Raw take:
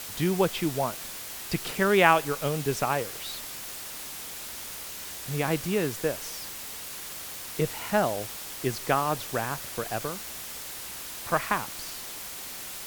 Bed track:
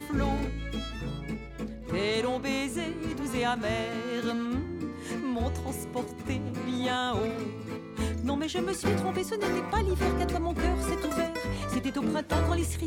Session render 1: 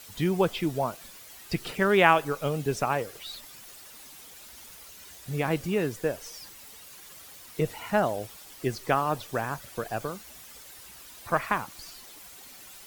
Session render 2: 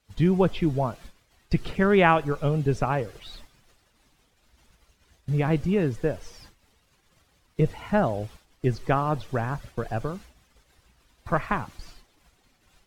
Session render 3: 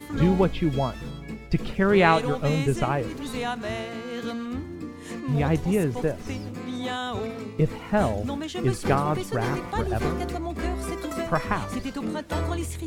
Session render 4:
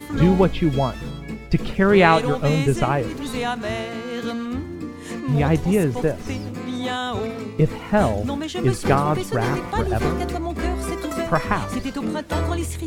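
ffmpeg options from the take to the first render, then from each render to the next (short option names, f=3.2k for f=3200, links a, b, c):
-af "afftdn=nr=11:nf=-39"
-af "agate=range=-20dB:threshold=-45dB:ratio=16:detection=peak,aemphasis=mode=reproduction:type=bsi"
-filter_complex "[1:a]volume=-1dB[a];[0:a][a]amix=inputs=2:normalize=0"
-af "volume=4.5dB,alimiter=limit=-2dB:level=0:latency=1"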